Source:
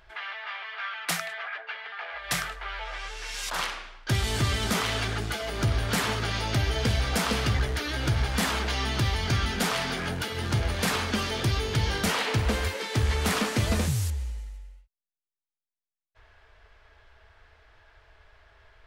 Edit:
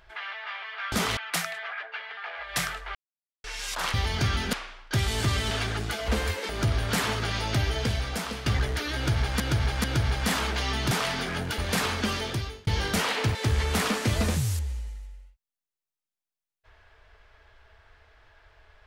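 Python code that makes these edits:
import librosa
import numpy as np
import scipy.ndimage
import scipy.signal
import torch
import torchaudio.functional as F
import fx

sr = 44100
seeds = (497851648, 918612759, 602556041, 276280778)

y = fx.edit(x, sr, fx.silence(start_s=2.7, length_s=0.49),
    fx.move(start_s=4.67, length_s=0.25, to_s=0.92),
    fx.fade_out_to(start_s=6.63, length_s=0.83, floor_db=-10.5),
    fx.repeat(start_s=7.96, length_s=0.44, count=3),
    fx.move(start_s=9.03, length_s=0.59, to_s=3.69),
    fx.cut(start_s=10.29, length_s=0.39),
    fx.fade_out_span(start_s=11.27, length_s=0.5),
    fx.move(start_s=12.45, length_s=0.41, to_s=5.49), tone=tone)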